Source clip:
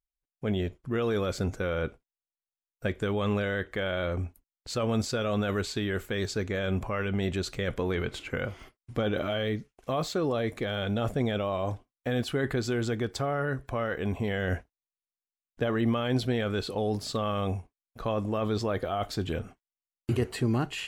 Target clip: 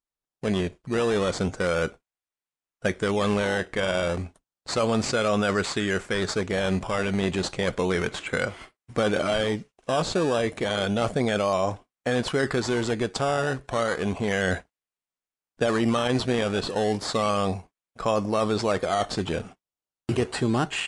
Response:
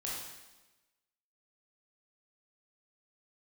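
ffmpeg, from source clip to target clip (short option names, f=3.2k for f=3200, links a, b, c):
-filter_complex "[0:a]equalizer=f=180:t=o:w=0.41:g=6,agate=range=-6dB:threshold=-46dB:ratio=16:detection=peak,lowshelf=f=330:g=-12,asplit=2[a][b];[b]acrusher=samples=14:mix=1:aa=0.000001:lfo=1:lforange=14:lforate=0.32,volume=-3.5dB[c];[a][c]amix=inputs=2:normalize=0,aresample=22050,aresample=44100,volume=5dB"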